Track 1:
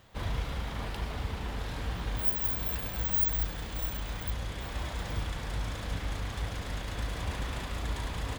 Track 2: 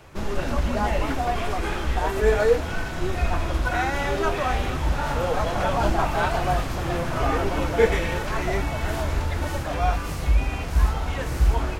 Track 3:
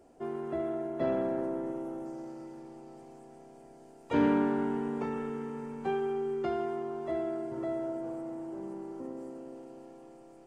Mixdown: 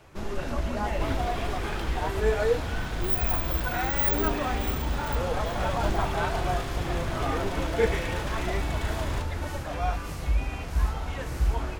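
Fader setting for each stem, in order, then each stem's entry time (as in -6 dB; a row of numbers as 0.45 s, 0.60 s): +1.0 dB, -5.5 dB, -8.5 dB; 0.85 s, 0.00 s, 0.00 s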